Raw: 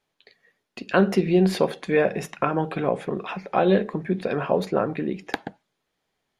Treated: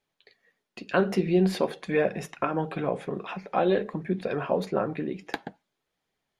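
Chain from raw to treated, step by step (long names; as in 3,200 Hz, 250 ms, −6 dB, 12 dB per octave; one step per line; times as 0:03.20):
flanger 0.49 Hz, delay 0.3 ms, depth 7.2 ms, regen −60%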